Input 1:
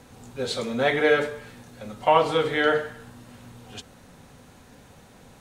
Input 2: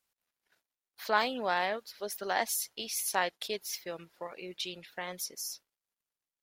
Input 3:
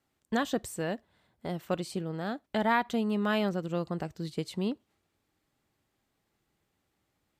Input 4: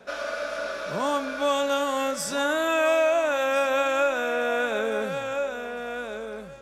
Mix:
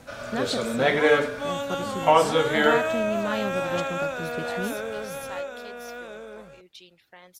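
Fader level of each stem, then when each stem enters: +0.5 dB, -10.0 dB, -1.0 dB, -5.5 dB; 0.00 s, 2.15 s, 0.00 s, 0.00 s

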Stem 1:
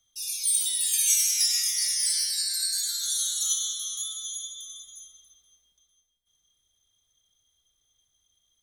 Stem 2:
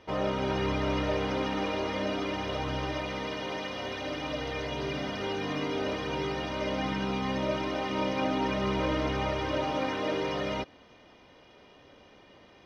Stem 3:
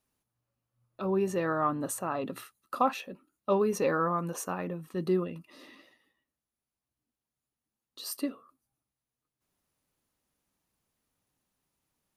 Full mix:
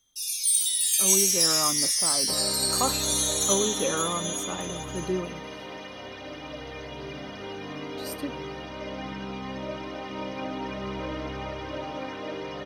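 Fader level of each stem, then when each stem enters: +1.5 dB, -4.5 dB, -1.5 dB; 0.00 s, 2.20 s, 0.00 s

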